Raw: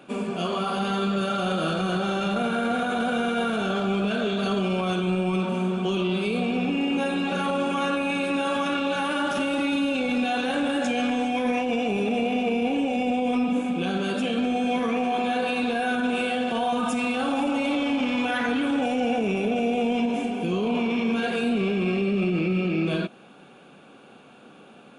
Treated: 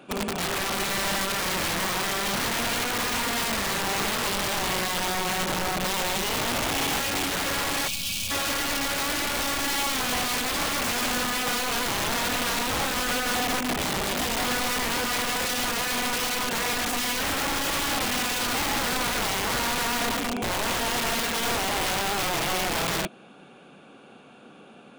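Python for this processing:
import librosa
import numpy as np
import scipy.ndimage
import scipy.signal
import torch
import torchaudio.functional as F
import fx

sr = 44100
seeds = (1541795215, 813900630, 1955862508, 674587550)

y = (np.mod(10.0 ** (22.0 / 20.0) * x + 1.0, 2.0) - 1.0) / 10.0 ** (22.0 / 20.0)
y = fx.spec_box(y, sr, start_s=7.88, length_s=0.43, low_hz=250.0, high_hz=2200.0, gain_db=-18)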